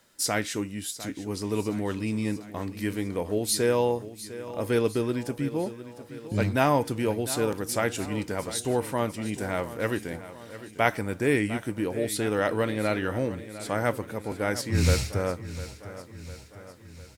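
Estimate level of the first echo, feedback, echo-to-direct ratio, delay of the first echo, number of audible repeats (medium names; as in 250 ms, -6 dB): -14.5 dB, 56%, -13.0 dB, 703 ms, 5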